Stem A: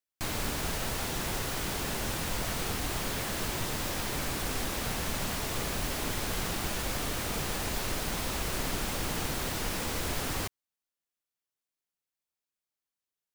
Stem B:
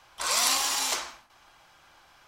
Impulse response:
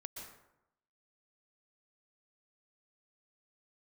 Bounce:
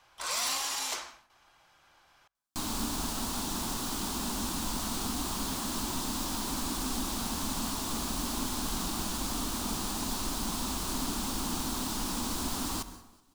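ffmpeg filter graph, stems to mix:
-filter_complex "[0:a]equalizer=f=125:t=o:w=1:g=-9,equalizer=f=250:t=o:w=1:g=12,equalizer=f=500:t=o:w=1:g=-11,equalizer=f=1k:t=o:w=1:g=8,equalizer=f=2k:t=o:w=1:g=-11,equalizer=f=4k:t=o:w=1:g=4,equalizer=f=8k:t=o:w=1:g=4,adelay=2350,volume=-4.5dB,asplit=3[a][b][c];[b]volume=-4dB[d];[c]volume=-21.5dB[e];[1:a]asoftclip=type=hard:threshold=-20.5dB,volume=-6dB,asplit=2[f][g];[g]volume=-23dB[h];[2:a]atrim=start_sample=2205[i];[d][h]amix=inputs=2:normalize=0[j];[j][i]afir=irnorm=-1:irlink=0[k];[e]aecho=0:1:188|376|564|752|940|1128|1316|1504:1|0.52|0.27|0.141|0.0731|0.038|0.0198|0.0103[l];[a][f][k][l]amix=inputs=4:normalize=0"

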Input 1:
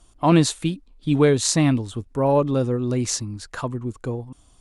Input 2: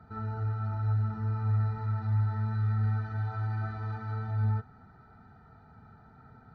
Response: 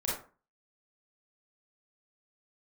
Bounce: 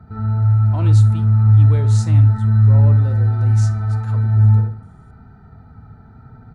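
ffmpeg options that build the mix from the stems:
-filter_complex "[0:a]adelay=500,volume=-14dB,asplit=3[a][b][c];[b]volume=-16dB[d];[c]volume=-23dB[e];[1:a]lowshelf=f=260:g=12,volume=3dB,asplit=2[f][g];[g]volume=-3.5dB[h];[2:a]atrim=start_sample=2205[i];[d][i]afir=irnorm=-1:irlink=0[j];[e][h]amix=inputs=2:normalize=0,aecho=0:1:74|148|222|296|370:1|0.34|0.116|0.0393|0.0134[k];[a][f][j][k]amix=inputs=4:normalize=0"

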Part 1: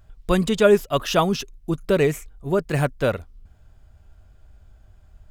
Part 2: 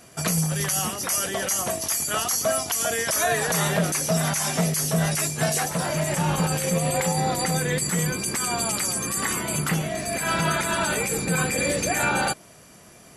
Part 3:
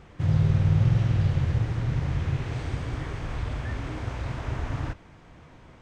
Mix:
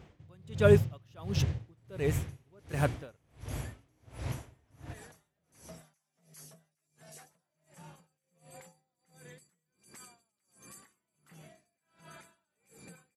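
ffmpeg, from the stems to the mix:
-filter_complex "[0:a]volume=-6.5dB[a];[1:a]acompressor=threshold=-34dB:ratio=4,adelay=1600,volume=-15.5dB[b];[2:a]equalizer=f=1.3k:t=o:w=1.1:g=-6,volume=-2dB[c];[a][b][c]amix=inputs=3:normalize=0,highpass=74,aeval=exprs='val(0)*pow(10,-35*(0.5-0.5*cos(2*PI*1.4*n/s))/20)':c=same"

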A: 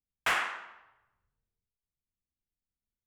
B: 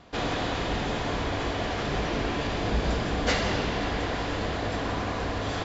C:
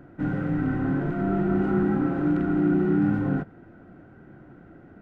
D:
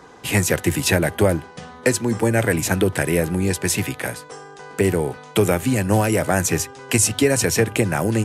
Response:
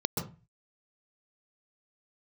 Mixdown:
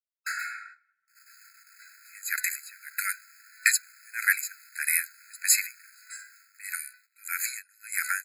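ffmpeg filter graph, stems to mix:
-filter_complex "[0:a]volume=-1dB,asplit=2[a][b];[b]volume=-4dB[c];[1:a]afwtdn=0.0141,acrusher=bits=3:dc=4:mix=0:aa=0.000001,adelay=950,volume=-16dB,asplit=3[d][e][f];[e]volume=-7dB[g];[f]volume=-10.5dB[h];[2:a]alimiter=limit=-20dB:level=0:latency=1,aeval=exprs='val(0)*pow(10,-30*if(lt(mod(-7.2*n/s,1),2*abs(-7.2)/1000),1-mod(-7.2*n/s,1)/(2*abs(-7.2)/1000),(mod(-7.2*n/s,1)-2*abs(-7.2)/1000)/(1-2*abs(-7.2)/1000))/20)':c=same,adelay=500,volume=-19.5dB,asplit=2[i][j];[j]volume=-12dB[k];[3:a]aeval=exprs='val(0)*pow(10,-31*(0.5-0.5*cos(2*PI*1.6*n/s))/20)':c=same,adelay=1800,volume=2.5dB[l];[4:a]atrim=start_sample=2205[m];[c][g][k]amix=inputs=3:normalize=0[n];[n][m]afir=irnorm=-1:irlink=0[o];[h]aecho=0:1:637:1[p];[a][d][i][l][o][p]amix=inputs=6:normalize=0,agate=range=-12dB:threshold=-43dB:ratio=16:detection=peak,highshelf=f=8.3k:g=11.5,afftfilt=real='re*eq(mod(floor(b*sr/1024/1300),2),1)':imag='im*eq(mod(floor(b*sr/1024/1300),2),1)':win_size=1024:overlap=0.75"

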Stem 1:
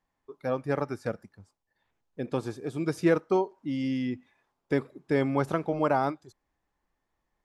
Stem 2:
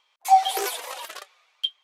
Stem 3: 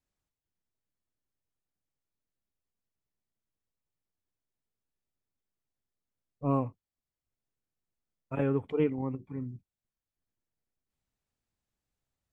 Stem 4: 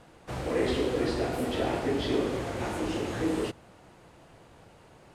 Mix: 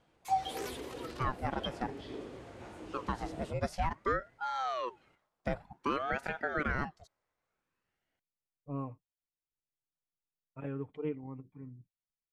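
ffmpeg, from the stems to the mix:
-filter_complex "[0:a]highpass=270,aeval=exprs='val(0)*sin(2*PI*660*n/s+660*0.7/0.54*sin(2*PI*0.54*n/s))':c=same,adelay=750,volume=0.5dB[a];[1:a]volume=-14dB[b];[2:a]aecho=1:1:6.6:0.38,adelay=2250,volume=-11.5dB[c];[3:a]volume=-16dB[d];[a][b][c][d]amix=inputs=4:normalize=0,highshelf=f=11k:g=-9.5,alimiter=limit=-21dB:level=0:latency=1:release=131"

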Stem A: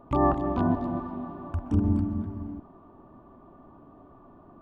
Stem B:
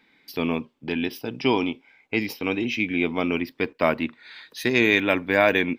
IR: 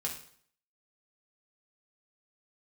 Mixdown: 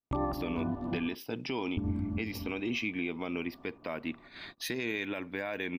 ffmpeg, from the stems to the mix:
-filter_complex "[0:a]adynamicequalizer=threshold=0.00794:dfrequency=1000:dqfactor=0.75:tfrequency=1000:tqfactor=0.75:attack=5:release=100:ratio=0.375:range=2.5:mode=cutabove:tftype=bell,volume=-1dB,asplit=3[a][b][c];[a]atrim=end=1.15,asetpts=PTS-STARTPTS,afade=t=out:st=1.146:d=0.004:c=hsin[d];[b]atrim=start=1.15:end=1.77,asetpts=PTS-STARTPTS,volume=0[e];[c]atrim=start=1.77,asetpts=PTS-STARTPTS,afade=t=in:d=0.004:c=hsin[f];[d][e][f]concat=n=3:v=0:a=1[g];[1:a]adelay=50,volume=-2dB[h];[g][h]amix=inputs=2:normalize=0,agate=range=-43dB:threshold=-45dB:ratio=16:detection=peak,alimiter=limit=-23dB:level=0:latency=1:release=361"

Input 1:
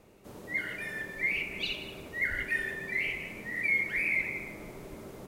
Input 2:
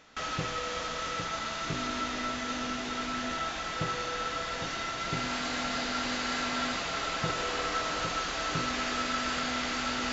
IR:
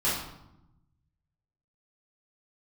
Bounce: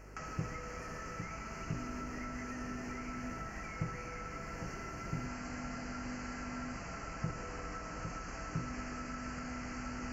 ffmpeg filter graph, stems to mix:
-filter_complex "[0:a]equalizer=f=420:w=1.5:g=8,acompressor=threshold=-34dB:ratio=6,volume=-5dB[a];[1:a]volume=-0.5dB[b];[a][b]amix=inputs=2:normalize=0,acrossover=split=220[c][d];[d]acompressor=threshold=-43dB:ratio=6[e];[c][e]amix=inputs=2:normalize=0,aeval=exprs='val(0)+0.00251*(sin(2*PI*50*n/s)+sin(2*PI*2*50*n/s)/2+sin(2*PI*3*50*n/s)/3+sin(2*PI*4*50*n/s)/4+sin(2*PI*5*50*n/s)/5)':c=same,asuperstop=centerf=3600:order=4:qfactor=1.4"

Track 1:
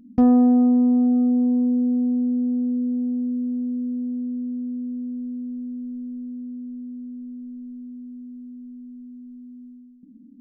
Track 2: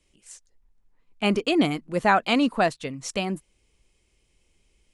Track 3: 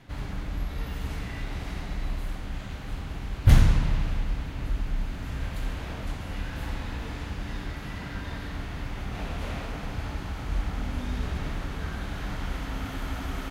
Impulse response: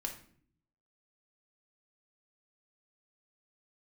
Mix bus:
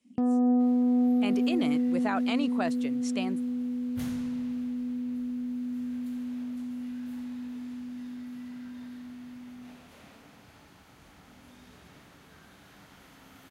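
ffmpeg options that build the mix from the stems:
-filter_complex "[0:a]agate=range=-33dB:threshold=-39dB:ratio=3:detection=peak,adynamicequalizer=threshold=0.0355:dfrequency=240:dqfactor=2.4:tfrequency=240:tqfactor=2.4:attack=5:release=100:ratio=0.375:range=2:mode=cutabove:tftype=bell,volume=-1.5dB[a];[1:a]volume=-7.5dB[b];[2:a]highshelf=f=5.8k:g=10.5,adelay=500,volume=-17dB[c];[a][b][c]amix=inputs=3:normalize=0,highpass=150,alimiter=limit=-19dB:level=0:latency=1:release=22"

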